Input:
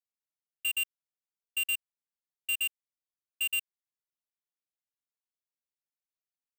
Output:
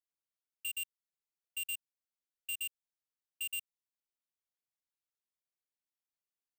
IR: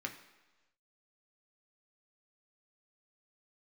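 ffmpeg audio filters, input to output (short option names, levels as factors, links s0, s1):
-filter_complex "[0:a]acrossover=split=220|3000[s0][s1][s2];[s1]acompressor=threshold=0.00158:ratio=2[s3];[s0][s3][s2]amix=inputs=3:normalize=0,volume=0.596"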